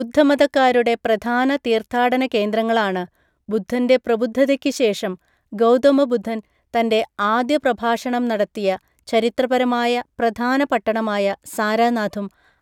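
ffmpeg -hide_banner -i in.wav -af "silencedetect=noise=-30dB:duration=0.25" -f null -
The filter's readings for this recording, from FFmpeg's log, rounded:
silence_start: 3.05
silence_end: 3.49 | silence_duration: 0.44
silence_start: 5.15
silence_end: 5.53 | silence_duration: 0.38
silence_start: 6.40
silence_end: 6.74 | silence_duration: 0.34
silence_start: 8.76
silence_end: 9.08 | silence_duration: 0.32
silence_start: 12.27
silence_end: 12.62 | silence_duration: 0.35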